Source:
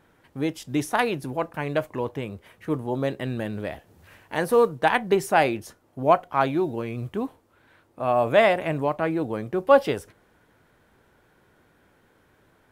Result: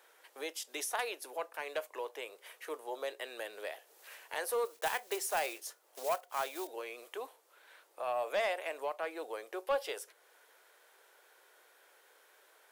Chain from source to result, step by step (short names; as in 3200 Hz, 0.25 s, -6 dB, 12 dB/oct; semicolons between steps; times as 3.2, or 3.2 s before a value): 4.65–6.68 block floating point 5-bit; steep high-pass 420 Hz 36 dB/oct; high shelf 2900 Hz +11.5 dB; compressor 1.5:1, threshold -44 dBFS, peak gain reduction 12 dB; soft clip -20 dBFS, distortion -18 dB; gain -3.5 dB